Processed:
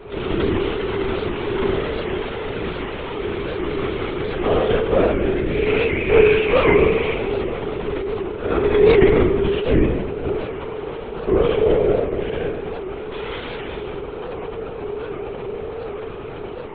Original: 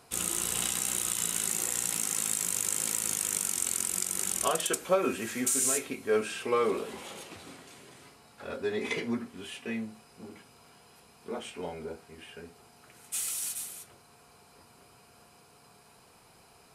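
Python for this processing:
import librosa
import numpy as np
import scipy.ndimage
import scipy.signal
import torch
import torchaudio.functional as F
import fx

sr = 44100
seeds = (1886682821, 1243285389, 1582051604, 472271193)

p1 = fx.bin_compress(x, sr, power=0.6)
p2 = fx.peak_eq(p1, sr, hz=2400.0, db=14.5, octaves=0.46, at=(5.49, 7.09))
p3 = fx.rider(p2, sr, range_db=5, speed_s=2.0)
p4 = p2 + (p3 * librosa.db_to_amplitude(0.0))
p5 = fx.tube_stage(p4, sr, drive_db=10.0, bias=0.8)
p6 = fx.peak_eq(p5, sr, hz=370.0, db=14.5, octaves=0.75)
p7 = fx.rev_spring(p6, sr, rt60_s=1.2, pass_ms=(35,), chirp_ms=75, drr_db=-4.5)
p8 = fx.lpc_vocoder(p7, sr, seeds[0], excitation='whisper', order=16)
p9 = fx.record_warp(p8, sr, rpm=78.0, depth_cents=160.0)
y = p9 * librosa.db_to_amplitude(-4.0)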